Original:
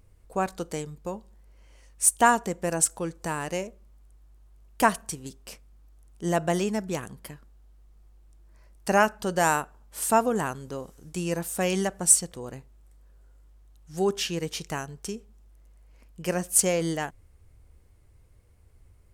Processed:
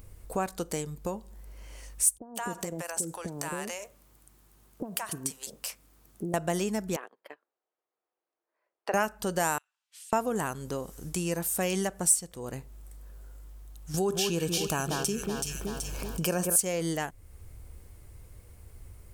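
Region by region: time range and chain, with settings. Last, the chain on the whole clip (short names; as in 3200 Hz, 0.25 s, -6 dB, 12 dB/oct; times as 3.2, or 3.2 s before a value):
2.18–6.34 HPF 130 Hz + compressor, threshold -30 dBFS + bands offset in time lows, highs 0.17 s, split 570 Hz
6.96–8.94 gate -41 dBFS, range -20 dB + HPF 410 Hz 24 dB/oct + air absorption 390 m
9.58–10.13 ladder band-pass 3600 Hz, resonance 30% + compressor 8:1, threshold -57 dBFS
13.94–16.56 Butterworth band-stop 2000 Hz, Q 4.5 + echo with dull and thin repeats by turns 0.189 s, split 2100 Hz, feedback 57%, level -6.5 dB + fast leveller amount 50%
whole clip: high shelf 9700 Hz +11.5 dB; compressor 2:1, threshold -44 dBFS; gain +8 dB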